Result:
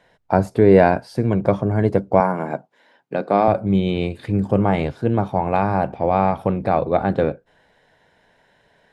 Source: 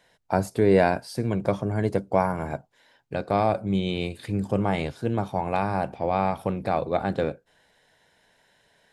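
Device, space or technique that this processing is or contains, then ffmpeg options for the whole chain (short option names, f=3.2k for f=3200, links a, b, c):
through cloth: -filter_complex "[0:a]highshelf=f=3.6k:g=-14.5,asettb=1/sr,asplit=3[a][b][c];[a]atrim=end=2.204[d];[b]atrim=start=2.2:end=3.48,asetpts=PTS-STARTPTS,afade=t=in:d=0.004:c=qsin,afade=t=out:st=1.276:d=0.004:c=qsin,highpass=f=170:w=0.5412,highpass=f=170:w=1.3066[e];[c]atrim=start=3.476[f];[d][e]acrossfade=d=0.004:c1=hsin:c2=qsin[g];[g][f]acrossfade=d=0.004:c1=qsin:c2=hsin,volume=7dB"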